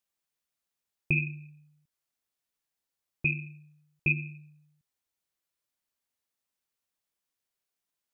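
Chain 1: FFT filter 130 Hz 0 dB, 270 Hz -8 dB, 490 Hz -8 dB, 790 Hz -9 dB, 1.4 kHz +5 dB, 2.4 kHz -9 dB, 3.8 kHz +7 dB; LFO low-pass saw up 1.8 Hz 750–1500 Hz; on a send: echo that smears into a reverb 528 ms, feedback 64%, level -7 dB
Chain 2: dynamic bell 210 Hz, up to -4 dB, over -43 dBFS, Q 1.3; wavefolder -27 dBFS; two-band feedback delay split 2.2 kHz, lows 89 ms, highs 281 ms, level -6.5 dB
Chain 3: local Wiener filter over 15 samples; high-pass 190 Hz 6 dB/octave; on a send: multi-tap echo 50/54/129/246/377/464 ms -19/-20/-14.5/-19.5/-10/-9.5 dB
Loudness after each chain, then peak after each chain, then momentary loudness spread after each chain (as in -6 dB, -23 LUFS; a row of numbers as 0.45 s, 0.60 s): -42.0 LUFS, -38.0 LUFS, -32.5 LUFS; -20.0 dBFS, -25.0 dBFS, -14.0 dBFS; 21 LU, 19 LU, 9 LU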